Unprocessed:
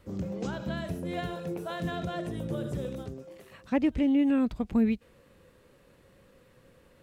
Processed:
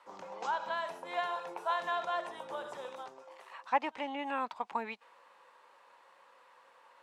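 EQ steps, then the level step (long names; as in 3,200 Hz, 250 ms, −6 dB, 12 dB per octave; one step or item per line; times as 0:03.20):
high-pass with resonance 920 Hz, resonance Q 4.9
high-frequency loss of the air 53 metres
0.0 dB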